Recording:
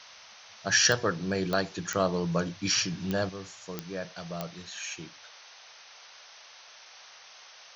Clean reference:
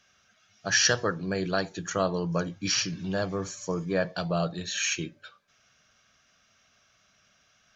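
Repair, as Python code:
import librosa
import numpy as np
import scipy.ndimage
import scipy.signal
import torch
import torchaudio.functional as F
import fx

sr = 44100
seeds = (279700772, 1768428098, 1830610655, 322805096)

y = fx.fix_declick_ar(x, sr, threshold=10.0)
y = fx.noise_reduce(y, sr, print_start_s=6.41, print_end_s=6.91, reduce_db=14.0)
y = fx.fix_level(y, sr, at_s=3.29, step_db=9.5)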